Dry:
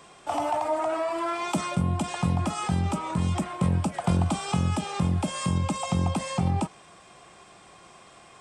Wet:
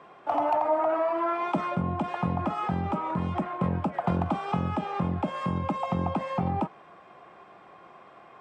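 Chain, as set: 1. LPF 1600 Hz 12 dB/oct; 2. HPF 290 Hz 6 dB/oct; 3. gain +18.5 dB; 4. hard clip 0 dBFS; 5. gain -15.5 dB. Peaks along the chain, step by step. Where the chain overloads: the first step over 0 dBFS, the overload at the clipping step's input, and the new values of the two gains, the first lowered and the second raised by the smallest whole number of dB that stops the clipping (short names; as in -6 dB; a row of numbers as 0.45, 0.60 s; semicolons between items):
-15.0, -15.5, +3.0, 0.0, -15.5 dBFS; step 3, 3.0 dB; step 3 +15.5 dB, step 5 -12.5 dB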